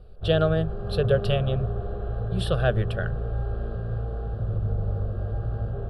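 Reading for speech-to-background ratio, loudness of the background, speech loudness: 4.0 dB, -30.5 LUFS, -26.5 LUFS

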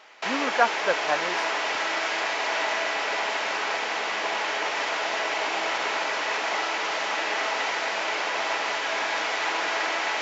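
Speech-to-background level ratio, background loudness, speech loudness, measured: -1.5 dB, -26.0 LUFS, -27.5 LUFS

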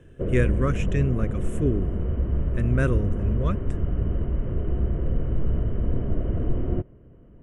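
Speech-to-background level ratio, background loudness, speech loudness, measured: 0.0 dB, -27.5 LUFS, -27.5 LUFS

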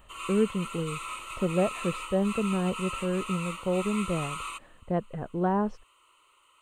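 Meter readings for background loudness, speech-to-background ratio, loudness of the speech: -37.0 LUFS, 7.0 dB, -30.0 LUFS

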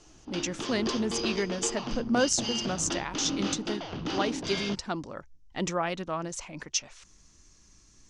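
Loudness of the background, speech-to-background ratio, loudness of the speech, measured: -34.0 LUFS, 2.5 dB, -31.5 LUFS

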